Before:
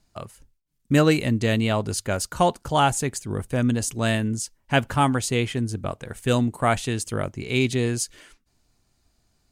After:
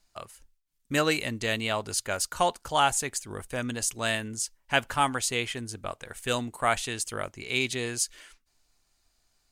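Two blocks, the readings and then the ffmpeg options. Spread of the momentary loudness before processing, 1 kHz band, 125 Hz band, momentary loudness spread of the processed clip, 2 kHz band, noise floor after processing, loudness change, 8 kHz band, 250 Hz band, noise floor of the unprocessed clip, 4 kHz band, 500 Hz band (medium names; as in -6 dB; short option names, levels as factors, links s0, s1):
10 LU, -3.5 dB, -13.5 dB, 11 LU, -1.0 dB, -72 dBFS, -5.0 dB, 0.0 dB, -11.5 dB, -70 dBFS, -0.5 dB, -6.5 dB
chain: -af "equalizer=f=140:w=0.32:g=-14"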